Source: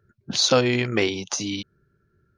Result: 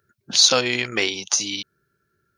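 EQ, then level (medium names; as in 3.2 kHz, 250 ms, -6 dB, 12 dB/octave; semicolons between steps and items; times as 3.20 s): tilt EQ +3 dB/octave; 0.0 dB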